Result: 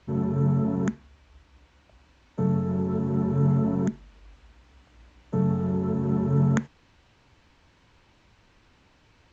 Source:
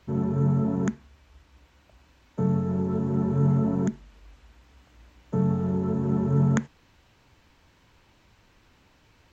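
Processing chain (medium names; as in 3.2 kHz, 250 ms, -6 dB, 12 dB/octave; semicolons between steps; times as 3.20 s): low-pass 7.2 kHz 12 dB/octave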